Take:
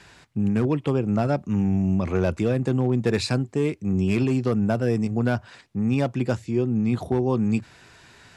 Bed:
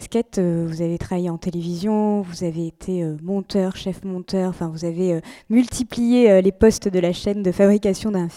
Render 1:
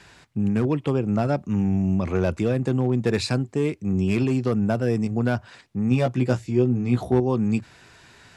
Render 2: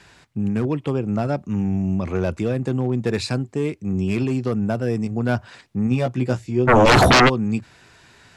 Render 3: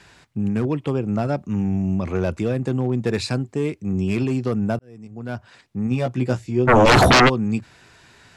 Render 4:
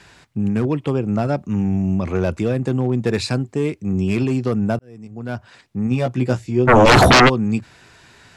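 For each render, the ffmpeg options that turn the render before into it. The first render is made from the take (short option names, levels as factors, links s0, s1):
-filter_complex "[0:a]asettb=1/sr,asplit=3[s0][s1][s2];[s0]atrim=end=5.894[s3];[s1]atrim=start=5.89:end=7.2,asetpts=PTS-STARTPTS,afade=t=in:d=0.004:c=qsin,afade=t=out:st=1.306:d=0.004:c=qsin,asplit=2[s4][s5];[s5]adelay=16,volume=0.596[s6];[s4][s6]amix=inputs=2:normalize=0,atrim=end_sample=57771[s7];[s2]atrim=start=7.196[s8];[s3][s7]acrossfade=d=0.004:c1=hsin:c2=qsin[s9];[s9][s8]acrossfade=d=0.004:c1=qsin:c2=hsin"
-filter_complex "[0:a]asplit=3[s0][s1][s2];[s0]afade=t=out:st=6.67:d=0.02[s3];[s1]aeval=exprs='0.355*sin(PI/2*10*val(0)/0.355)':c=same,afade=t=in:st=6.67:d=0.02,afade=t=out:st=7.28:d=0.02[s4];[s2]afade=t=in:st=7.28:d=0.02[s5];[s3][s4][s5]amix=inputs=3:normalize=0,asplit=3[s6][s7][s8];[s6]atrim=end=5.292[s9];[s7]atrim=start=5.288:end=5.872,asetpts=PTS-STARTPTS,volume=1.41[s10];[s8]atrim=start=5.868[s11];[s9][s10]acrossfade=d=0.004:c1=hsin:c2=hsin[s12];[s12][s11]acrossfade=d=0.004:c1=hsin:c2=hsin"
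-filter_complex "[0:a]asplit=2[s0][s1];[s0]atrim=end=4.79,asetpts=PTS-STARTPTS,afade=t=out:st=4.786:d=0.004:c=hsin[s2];[s1]atrim=start=4.79,asetpts=PTS-STARTPTS,afade=t=in:d=1.42[s3];[s2][s3]concat=n=2:v=0:a=1"
-af "volume=1.33"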